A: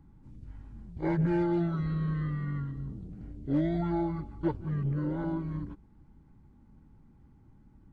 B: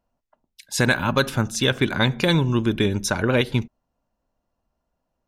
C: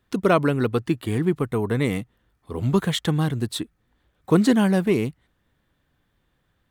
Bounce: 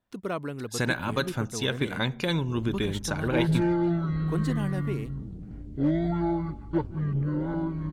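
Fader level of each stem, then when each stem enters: +3.0 dB, -8.0 dB, -13.5 dB; 2.30 s, 0.00 s, 0.00 s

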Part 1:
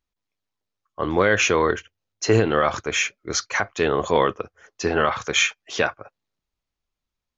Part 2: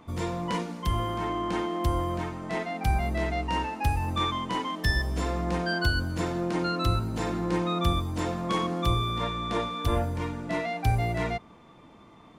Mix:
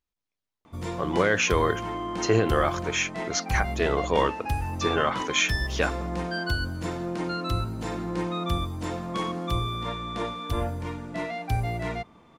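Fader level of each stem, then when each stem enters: -4.5 dB, -2.0 dB; 0.00 s, 0.65 s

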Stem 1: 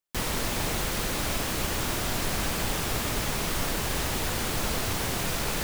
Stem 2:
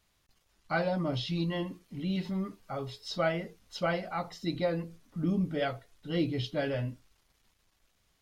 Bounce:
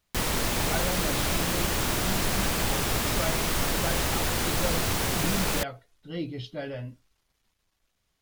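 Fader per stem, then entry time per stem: +2.0 dB, -3.5 dB; 0.00 s, 0.00 s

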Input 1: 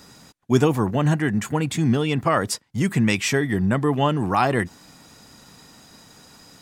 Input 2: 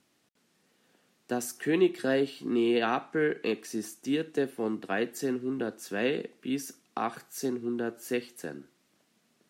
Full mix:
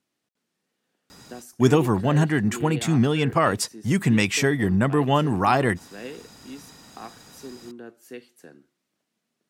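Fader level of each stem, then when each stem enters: 0.0 dB, -9.0 dB; 1.10 s, 0.00 s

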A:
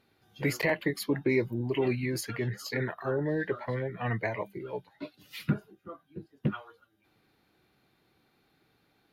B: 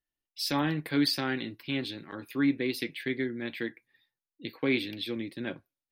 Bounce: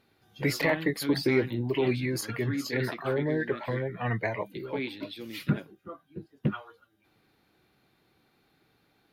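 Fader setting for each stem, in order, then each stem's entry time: +1.5 dB, -7.0 dB; 0.00 s, 0.10 s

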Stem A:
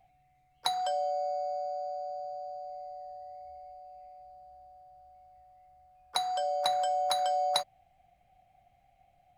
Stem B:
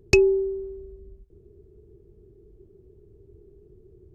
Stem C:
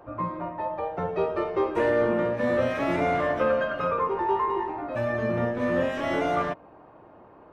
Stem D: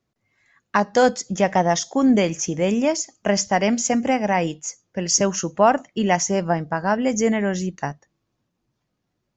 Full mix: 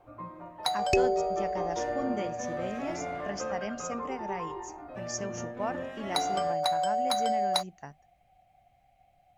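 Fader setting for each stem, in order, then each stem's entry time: +1.0 dB, -8.5 dB, -12.0 dB, -18.0 dB; 0.00 s, 0.80 s, 0.00 s, 0.00 s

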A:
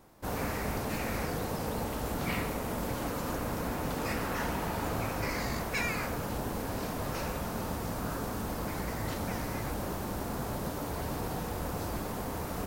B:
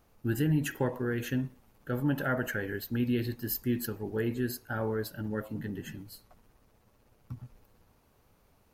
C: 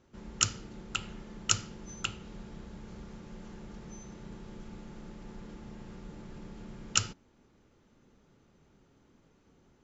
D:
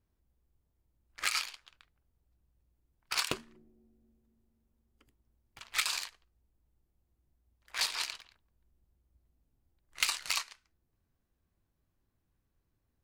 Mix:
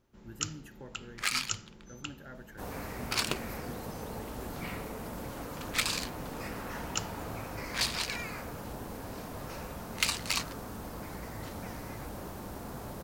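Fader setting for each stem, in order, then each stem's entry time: -6.5 dB, -18.5 dB, -7.5 dB, +1.0 dB; 2.35 s, 0.00 s, 0.00 s, 0.00 s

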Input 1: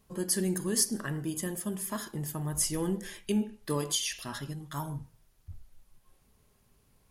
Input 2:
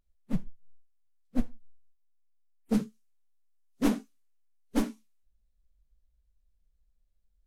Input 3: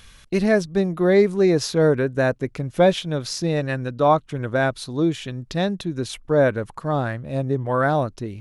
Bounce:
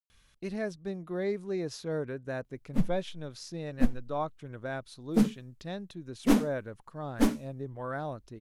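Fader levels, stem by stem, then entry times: mute, +3.0 dB, -16.0 dB; mute, 2.45 s, 0.10 s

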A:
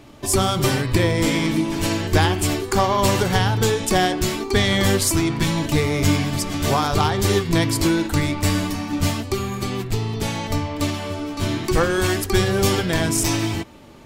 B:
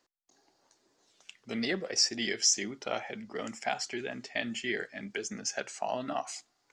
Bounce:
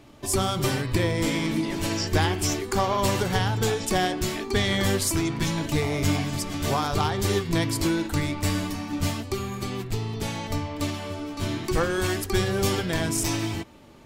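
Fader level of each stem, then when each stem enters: -5.5 dB, -6.0 dB; 0.00 s, 0.00 s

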